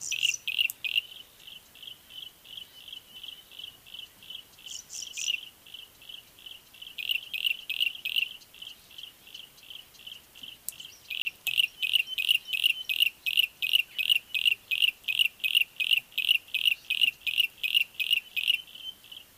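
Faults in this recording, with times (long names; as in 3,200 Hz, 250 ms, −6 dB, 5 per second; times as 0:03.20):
0:11.22–0:11.25: drop-out 30 ms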